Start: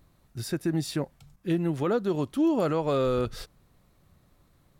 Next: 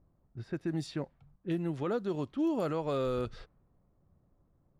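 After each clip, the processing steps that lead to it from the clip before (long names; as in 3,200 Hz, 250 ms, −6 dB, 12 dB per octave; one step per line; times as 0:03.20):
low-pass that shuts in the quiet parts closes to 800 Hz, open at −21 dBFS
level −6.5 dB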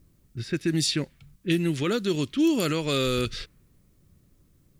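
drawn EQ curve 360 Hz 0 dB, 790 Hz −12 dB, 2,300 Hz +10 dB, 8,600 Hz +15 dB
level +8.5 dB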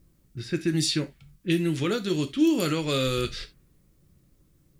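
convolution reverb, pre-delay 3 ms, DRR 7 dB
level −1.5 dB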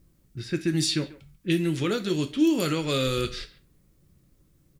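far-end echo of a speakerphone 140 ms, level −17 dB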